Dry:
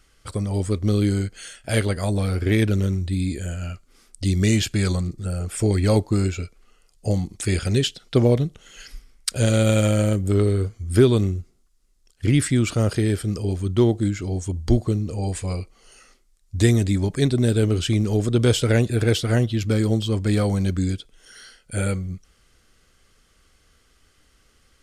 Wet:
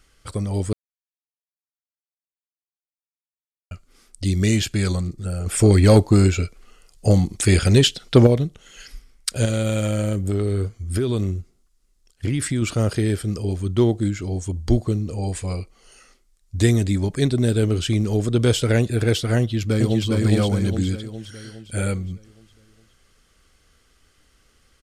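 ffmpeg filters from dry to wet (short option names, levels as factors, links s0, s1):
-filter_complex "[0:a]asettb=1/sr,asplit=3[s0][s1][s2];[s0]atrim=end=5.464[s3];[s1]atrim=start=5.46:end=8.27,asetpts=PTS-STARTPTS,afade=t=in:d=0.004:c=qsin,afade=t=out:st=2.806:d=0.004:c=qsin,acontrast=71[s4];[s2]atrim=start=8.266[s5];[s3][s4]acrossfade=d=0.004:c1=hsin:c2=qsin[s6];[s6][s5]acrossfade=d=0.004:c1=qsin:c2=hsin,asettb=1/sr,asplit=3[s7][s8][s9];[s7]atrim=end=9.454[s10];[s8]atrim=start=9.45:end=12.62,asetpts=PTS-STARTPTS,afade=t=in:d=0.004:c=qsin,afade=t=out:st=3.166:d=0.004:c=qsin,acompressor=threshold=0.126:ratio=6:attack=3.2:release=140:knee=1:detection=peak[s11];[s9]atrim=start=12.616[s12];[s10][s11]acrossfade=d=0.004:c1=hsin:c2=qsin[s13];[s13][s12]acrossfade=d=0.004:c1=qsin:c2=hsin,asplit=2[s14][s15];[s15]afade=t=in:st=19.39:d=0.01,afade=t=out:st=20.07:d=0.01,aecho=0:1:410|820|1230|1640|2050|2460|2870:0.841395|0.420698|0.210349|0.105174|0.0525872|0.0262936|0.0131468[s16];[s14][s16]amix=inputs=2:normalize=0,asplit=3[s17][s18][s19];[s17]atrim=end=0.73,asetpts=PTS-STARTPTS,afade=t=out:st=0.726:d=0.004:c=hsin[s20];[s18]atrim=start=0.73:end=3.71,asetpts=PTS-STARTPTS,volume=0[s21];[s19]atrim=start=3.71,asetpts=PTS-STARTPTS,afade=t=in:d=0.004:c=hsin[s22];[s20][s21][s22]concat=n=3:v=0:a=1"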